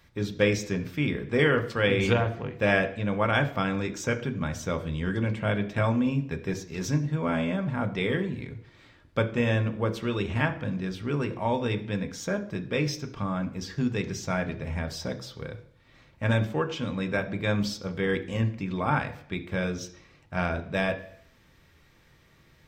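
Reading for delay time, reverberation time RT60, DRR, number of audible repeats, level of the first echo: no echo audible, 0.60 s, 6.0 dB, no echo audible, no echo audible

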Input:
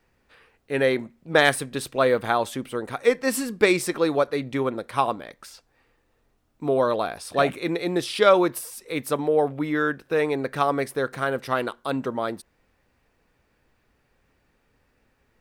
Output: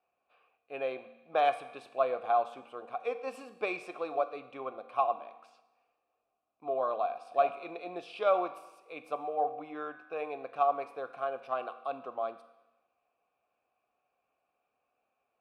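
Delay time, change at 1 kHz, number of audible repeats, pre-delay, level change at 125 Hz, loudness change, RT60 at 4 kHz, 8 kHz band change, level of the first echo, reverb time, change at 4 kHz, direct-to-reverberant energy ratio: no echo audible, −4.5 dB, no echo audible, 4 ms, below −25 dB, −10.0 dB, 1.0 s, below −25 dB, no echo audible, 1.0 s, −18.5 dB, 10.0 dB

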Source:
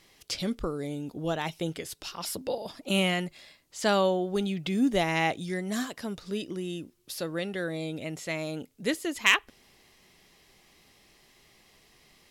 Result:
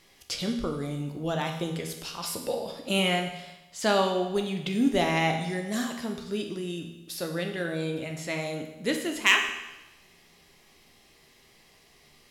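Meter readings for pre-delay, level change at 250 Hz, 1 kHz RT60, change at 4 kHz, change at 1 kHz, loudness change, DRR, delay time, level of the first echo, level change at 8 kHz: 13 ms, +1.0 dB, 1.0 s, +2.0 dB, +2.0 dB, +1.5 dB, 3.0 dB, no echo audible, no echo audible, +1.5 dB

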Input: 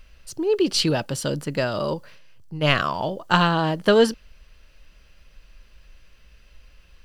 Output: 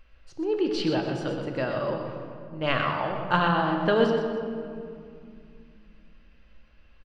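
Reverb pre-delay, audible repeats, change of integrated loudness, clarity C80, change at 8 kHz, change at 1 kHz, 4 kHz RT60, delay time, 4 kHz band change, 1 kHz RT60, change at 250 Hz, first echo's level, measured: 3 ms, 2, −4.5 dB, 4.0 dB, below −15 dB, −2.5 dB, 1.4 s, 123 ms, −9.0 dB, 2.2 s, −3.0 dB, −8.5 dB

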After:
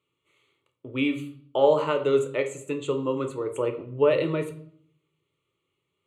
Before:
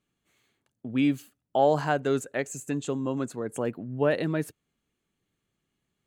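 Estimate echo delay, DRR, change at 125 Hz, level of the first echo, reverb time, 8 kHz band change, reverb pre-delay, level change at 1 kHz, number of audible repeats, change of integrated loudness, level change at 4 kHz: no echo audible, 5.5 dB, −2.0 dB, no echo audible, 0.60 s, −5.0 dB, 8 ms, −1.0 dB, no echo audible, +2.5 dB, +4.0 dB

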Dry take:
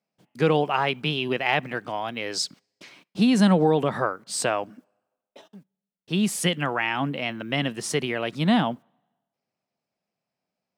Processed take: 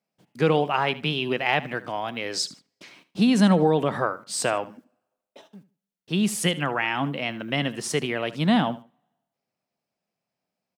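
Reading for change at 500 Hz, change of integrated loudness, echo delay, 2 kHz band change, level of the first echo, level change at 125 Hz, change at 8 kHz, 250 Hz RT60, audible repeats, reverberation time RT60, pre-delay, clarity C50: 0.0 dB, 0.0 dB, 76 ms, 0.0 dB, −17.0 dB, 0.0 dB, 0.0 dB, no reverb audible, 2, no reverb audible, no reverb audible, no reverb audible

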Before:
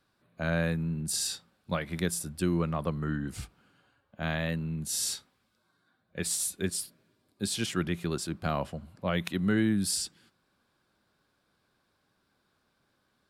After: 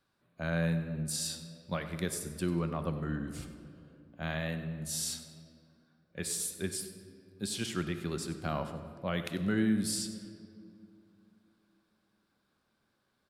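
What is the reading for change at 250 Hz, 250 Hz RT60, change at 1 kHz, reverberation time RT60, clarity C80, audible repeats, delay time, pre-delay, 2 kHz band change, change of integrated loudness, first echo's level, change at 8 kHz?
−3.0 dB, 3.4 s, −4.0 dB, 2.5 s, 9.5 dB, 1, 96 ms, 5 ms, −4.0 dB, −3.5 dB, −14.5 dB, −4.0 dB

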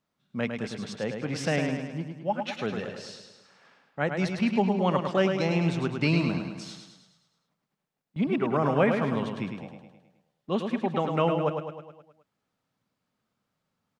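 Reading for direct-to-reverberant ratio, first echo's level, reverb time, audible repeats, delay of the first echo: no reverb audible, −6.0 dB, no reverb audible, 6, 105 ms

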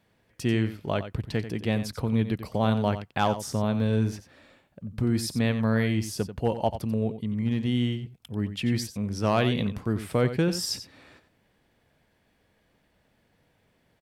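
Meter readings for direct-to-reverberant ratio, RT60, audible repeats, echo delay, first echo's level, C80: no reverb audible, no reverb audible, 1, 90 ms, −11.5 dB, no reverb audible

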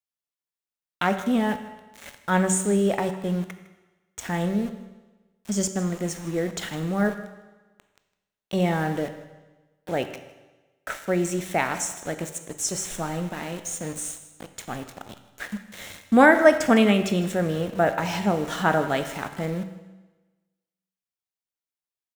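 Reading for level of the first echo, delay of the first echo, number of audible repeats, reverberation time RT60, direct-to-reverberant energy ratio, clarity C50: −18.0 dB, 157 ms, 1, 1.2 s, 8.5 dB, 10.0 dB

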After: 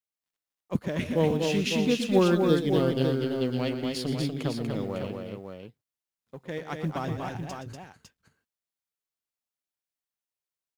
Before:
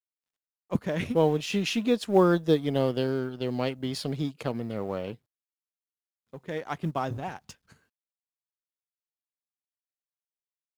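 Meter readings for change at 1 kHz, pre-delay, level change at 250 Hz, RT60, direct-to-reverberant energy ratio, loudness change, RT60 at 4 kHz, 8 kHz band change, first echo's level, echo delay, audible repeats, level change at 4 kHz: −2.5 dB, no reverb audible, +1.5 dB, no reverb audible, no reverb audible, +0.5 dB, no reverb audible, +2.0 dB, −11.5 dB, 120 ms, 3, +2.0 dB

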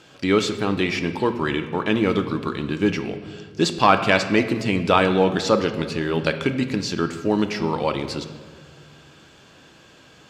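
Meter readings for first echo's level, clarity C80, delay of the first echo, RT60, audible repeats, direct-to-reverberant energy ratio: no echo audible, 11.5 dB, no echo audible, 1.7 s, no echo audible, 8.0 dB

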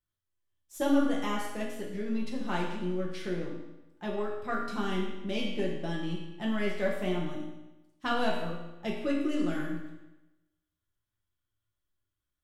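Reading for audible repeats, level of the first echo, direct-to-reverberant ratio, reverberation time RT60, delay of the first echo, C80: no echo audible, no echo audible, −3.5 dB, 1.0 s, no echo audible, 5.0 dB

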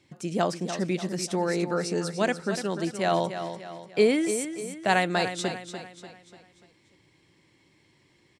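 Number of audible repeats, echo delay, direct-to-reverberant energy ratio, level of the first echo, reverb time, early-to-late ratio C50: 4, 294 ms, no reverb audible, −9.5 dB, no reverb audible, no reverb audible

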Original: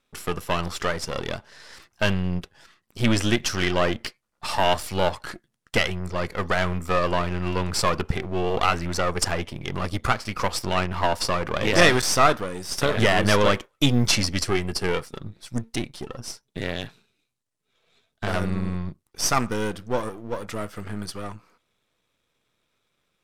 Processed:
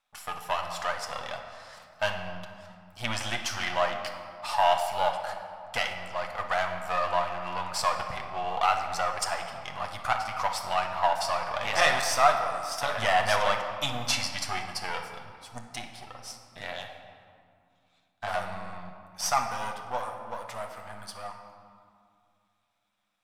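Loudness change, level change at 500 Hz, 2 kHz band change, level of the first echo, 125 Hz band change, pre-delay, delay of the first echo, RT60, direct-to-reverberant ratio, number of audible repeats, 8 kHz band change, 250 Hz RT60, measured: −4.5 dB, −6.5 dB, −4.5 dB, no echo audible, −16.5 dB, 8 ms, no echo audible, 2.3 s, 3.0 dB, no echo audible, −6.0 dB, 3.3 s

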